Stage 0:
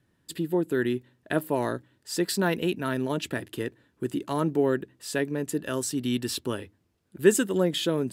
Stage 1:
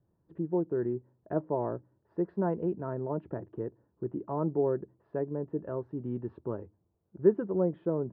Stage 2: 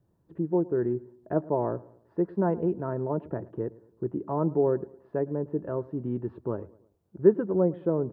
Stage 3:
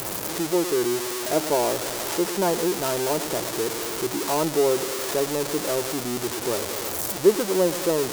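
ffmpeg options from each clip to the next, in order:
ffmpeg -i in.wav -af "lowpass=frequency=1000:width=0.5412,lowpass=frequency=1000:width=1.3066,equalizer=frequency=260:width_type=o:width=0.24:gain=-10,volume=-3dB" out.wav
ffmpeg -i in.wav -filter_complex "[0:a]asplit=2[link_01][link_02];[link_02]adelay=109,lowpass=frequency=1700:poles=1,volume=-20.5dB,asplit=2[link_03][link_04];[link_04]adelay=109,lowpass=frequency=1700:poles=1,volume=0.45,asplit=2[link_05][link_06];[link_06]adelay=109,lowpass=frequency=1700:poles=1,volume=0.45[link_07];[link_01][link_03][link_05][link_07]amix=inputs=4:normalize=0,volume=4dB" out.wav
ffmpeg -i in.wav -af "aeval=exprs='val(0)+0.5*0.0447*sgn(val(0))':channel_layout=same,bass=frequency=250:gain=-13,treble=frequency=4000:gain=12,volume=3.5dB" out.wav

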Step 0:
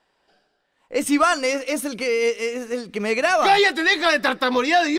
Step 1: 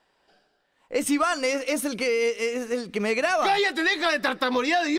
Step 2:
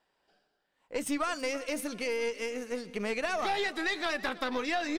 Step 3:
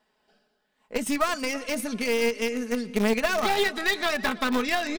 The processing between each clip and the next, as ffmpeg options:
ffmpeg -i in.wav -af "acompressor=threshold=-21dB:ratio=3" out.wav
ffmpeg -i in.wav -af "aeval=exprs='(tanh(4.47*val(0)+0.55)-tanh(0.55))/4.47':channel_layout=same,aecho=1:1:328|656|984|1312:0.119|0.063|0.0334|0.0177,volume=-6dB" out.wav
ffmpeg -i in.wav -filter_complex "[0:a]equalizer=frequency=230:width_type=o:width=0.44:gain=6,aecho=1:1:4.7:0.53,asplit=2[link_01][link_02];[link_02]acrusher=bits=3:mix=0:aa=0.000001,volume=-10.5dB[link_03];[link_01][link_03]amix=inputs=2:normalize=0,volume=3.5dB" out.wav

